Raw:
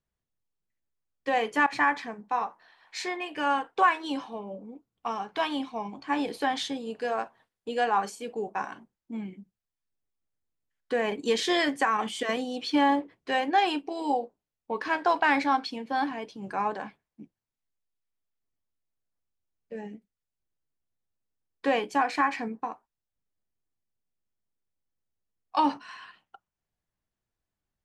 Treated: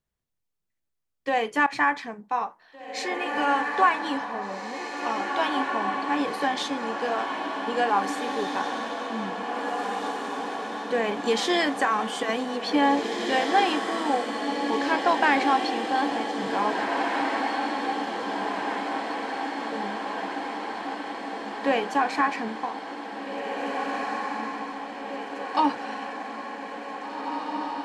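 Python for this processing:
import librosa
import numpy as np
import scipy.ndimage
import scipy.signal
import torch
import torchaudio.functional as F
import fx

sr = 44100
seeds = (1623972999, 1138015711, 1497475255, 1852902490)

y = fx.echo_diffused(x, sr, ms=1983, feedback_pct=69, wet_db=-4.0)
y = y * 10.0 ** (1.5 / 20.0)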